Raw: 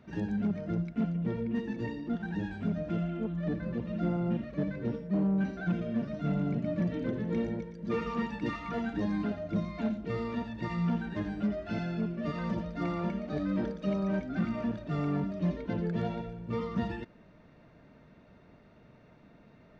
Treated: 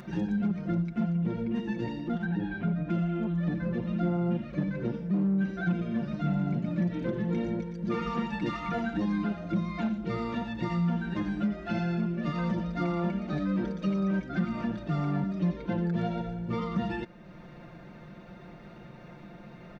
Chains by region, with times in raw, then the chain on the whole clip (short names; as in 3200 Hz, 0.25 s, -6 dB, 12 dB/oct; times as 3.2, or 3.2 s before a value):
2.25–2.9 LPF 2900 Hz + comb 7 ms, depth 43%
whole clip: upward compressor, threshold -46 dBFS; comb 5.7 ms, depth 72%; compressor 2:1, threshold -33 dBFS; gain +4 dB